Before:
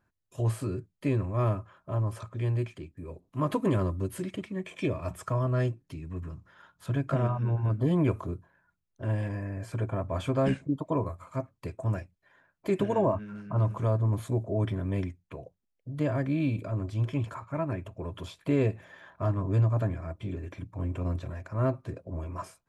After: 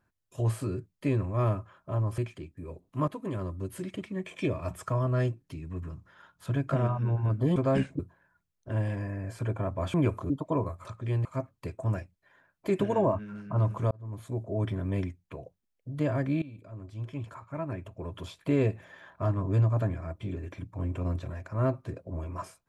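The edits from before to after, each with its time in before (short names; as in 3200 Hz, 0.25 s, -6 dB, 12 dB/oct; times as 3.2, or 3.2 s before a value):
2.18–2.58 move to 11.25
3.48–4.54 fade in linear, from -13 dB
7.96–8.32 swap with 10.27–10.7
13.91–15.04 fade in equal-power
16.42–18.37 fade in, from -19.5 dB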